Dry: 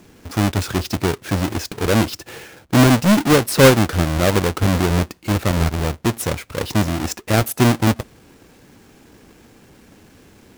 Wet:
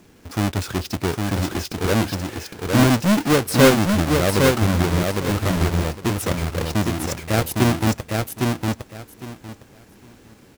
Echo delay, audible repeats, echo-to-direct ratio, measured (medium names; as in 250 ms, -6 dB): 808 ms, 3, -3.5 dB